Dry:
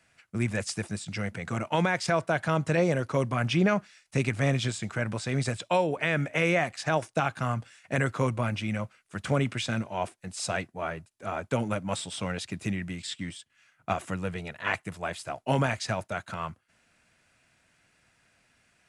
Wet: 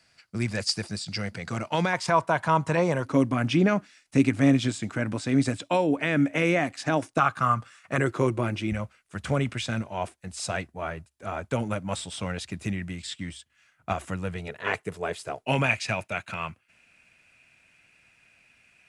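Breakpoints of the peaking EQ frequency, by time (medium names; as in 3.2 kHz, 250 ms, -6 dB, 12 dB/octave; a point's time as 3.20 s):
peaking EQ +14 dB 0.39 oct
4.7 kHz
from 1.93 s 980 Hz
from 3.05 s 280 Hz
from 7.18 s 1.2 kHz
from 7.98 s 350 Hz
from 8.72 s 69 Hz
from 14.48 s 430 Hz
from 15.45 s 2.5 kHz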